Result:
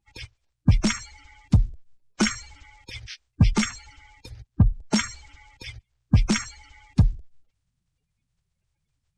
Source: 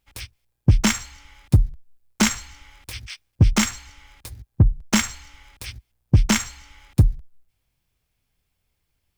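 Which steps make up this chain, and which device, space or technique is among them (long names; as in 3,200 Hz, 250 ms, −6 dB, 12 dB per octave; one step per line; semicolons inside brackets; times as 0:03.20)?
clip after many re-uploads (low-pass filter 7,500 Hz 24 dB per octave; spectral magnitudes quantised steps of 30 dB)
level −2 dB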